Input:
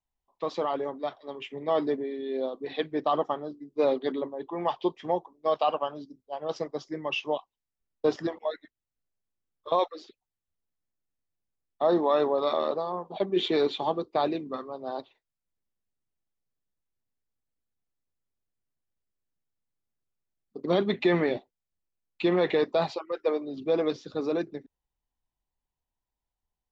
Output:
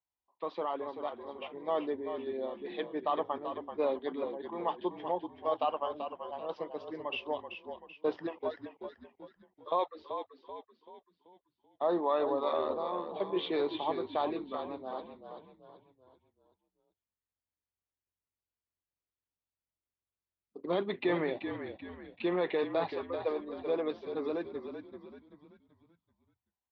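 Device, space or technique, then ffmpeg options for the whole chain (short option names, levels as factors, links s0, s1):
frequency-shifting delay pedal into a guitar cabinet: -filter_complex "[0:a]asplit=6[s0][s1][s2][s3][s4][s5];[s1]adelay=384,afreqshift=-44,volume=0.398[s6];[s2]adelay=768,afreqshift=-88,volume=0.172[s7];[s3]adelay=1152,afreqshift=-132,volume=0.0733[s8];[s4]adelay=1536,afreqshift=-176,volume=0.0316[s9];[s5]adelay=1920,afreqshift=-220,volume=0.0136[s10];[s0][s6][s7][s8][s9][s10]amix=inputs=6:normalize=0,highpass=87,equalizer=f=140:t=q:w=4:g=-10,equalizer=f=220:t=q:w=4:g=-5,equalizer=f=980:t=q:w=4:g=4,lowpass=f=3700:w=0.5412,lowpass=f=3700:w=1.3066,volume=0.473"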